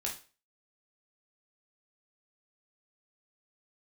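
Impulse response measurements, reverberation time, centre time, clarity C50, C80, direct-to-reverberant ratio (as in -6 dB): 0.35 s, 23 ms, 8.5 dB, 15.0 dB, -2.0 dB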